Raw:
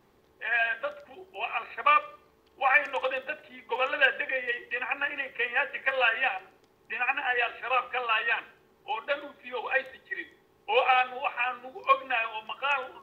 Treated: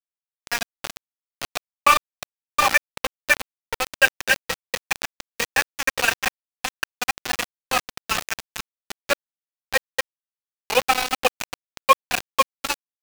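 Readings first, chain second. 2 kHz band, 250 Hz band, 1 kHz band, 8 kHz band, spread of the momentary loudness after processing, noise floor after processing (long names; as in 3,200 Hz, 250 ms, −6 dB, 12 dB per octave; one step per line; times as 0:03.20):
+3.0 dB, +10.5 dB, +4.0 dB, can't be measured, 15 LU, below −85 dBFS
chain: delay that plays each chunk backwards 380 ms, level −2.5 dB
transient designer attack +6 dB, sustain −1 dB
centre clipping without the shift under −17.5 dBFS
level +2 dB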